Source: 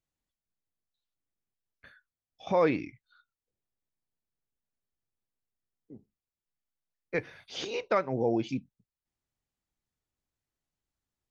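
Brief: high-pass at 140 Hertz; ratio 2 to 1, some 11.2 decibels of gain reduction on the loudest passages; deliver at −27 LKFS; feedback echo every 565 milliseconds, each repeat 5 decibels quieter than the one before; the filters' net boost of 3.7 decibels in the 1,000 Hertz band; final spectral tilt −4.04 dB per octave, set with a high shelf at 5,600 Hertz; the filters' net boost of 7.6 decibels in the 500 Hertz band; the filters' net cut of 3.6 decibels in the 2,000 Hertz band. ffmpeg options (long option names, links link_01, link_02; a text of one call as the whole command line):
ffmpeg -i in.wav -af "highpass=140,equalizer=frequency=500:width_type=o:gain=8,equalizer=frequency=1000:width_type=o:gain=3.5,equalizer=frequency=2000:width_type=o:gain=-7,highshelf=frequency=5600:gain=6.5,acompressor=threshold=-34dB:ratio=2,aecho=1:1:565|1130|1695|2260|2825|3390|3955:0.562|0.315|0.176|0.0988|0.0553|0.031|0.0173,volume=8.5dB" out.wav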